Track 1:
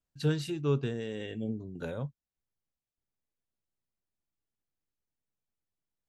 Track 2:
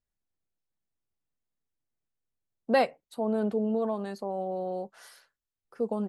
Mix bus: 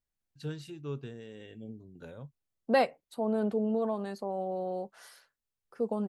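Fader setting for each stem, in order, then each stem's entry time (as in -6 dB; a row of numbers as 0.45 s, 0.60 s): -9.5 dB, -1.5 dB; 0.20 s, 0.00 s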